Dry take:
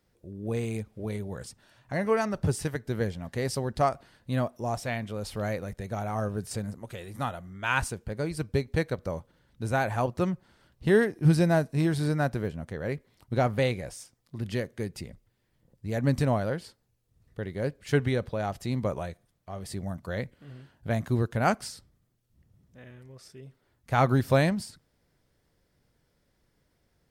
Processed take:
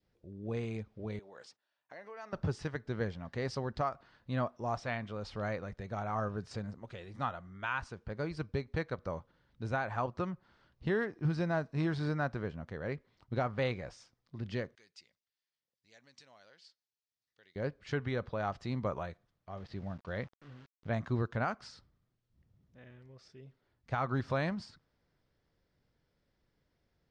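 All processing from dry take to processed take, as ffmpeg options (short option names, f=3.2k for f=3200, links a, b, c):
-filter_complex "[0:a]asettb=1/sr,asplit=3[a][b][c];[a]atrim=end=1.194[d];[b]atrim=start=1.19:end=2.33,asetpts=PTS-STARTPTS,afade=t=in:d=0.004:c=qsin,afade=t=out:st=1.136:d=0.004:c=qsin,agate=range=-17dB:threshold=-57dB:ratio=16:release=100:detection=peak,acompressor=threshold=-35dB:ratio=6:attack=3.2:release=140:knee=1:detection=peak,highpass=480[e];[c]atrim=start=2.326[f];[d][e]acrossfade=d=0.004:c1=hsin:c2=qsin[g];[g][f]acrossfade=d=0.004:c1=qsin:c2=hsin,asettb=1/sr,asplit=3[h][i][j];[h]atrim=end=14.754[k];[i]atrim=start=14.75:end=17.56,asetpts=PTS-STARTPTS,afade=t=in:d=0.004:c=qsin,afade=t=out:st=2.806:d=0.004:c=qsin,acompressor=threshold=-30dB:ratio=2.5:attack=3.2:release=140:knee=1:detection=peak,bandpass=f=6.6k:t=q:w=0.94[l];[j]atrim=start=17.556[m];[k][l]acrossfade=d=0.004:c1=hsin:c2=qsin[n];[n][m]acrossfade=d=0.004:c1=qsin:c2=hsin,asettb=1/sr,asplit=3[o][p][q];[o]atrim=end=19.574[r];[p]atrim=start=19.57:end=20.93,asetpts=PTS-STARTPTS,afade=t=in:d=0.004:c=qsin,afade=t=out:st=1.356:d=0.004:c=qsin,lowpass=f=4.3k:w=0.5412,lowpass=f=4.3k:w=1.3066,aeval=exprs='val(0)*gte(abs(val(0)),0.00355)':c=same[s];[q]atrim=start=20.926[t];[r][s]acrossfade=d=0.004:c1=hsin:c2=qsin[u];[u][t]acrossfade=d=0.004:c1=qsin:c2=hsin,lowpass=f=5.6k:w=0.5412,lowpass=f=5.6k:w=1.3066,adynamicequalizer=threshold=0.00631:dfrequency=1200:dqfactor=1.5:tfrequency=1200:tqfactor=1.5:attack=5:release=100:ratio=0.375:range=4:mode=boostabove:tftype=bell,alimiter=limit=-16dB:level=0:latency=1:release=313,volume=-6.5dB"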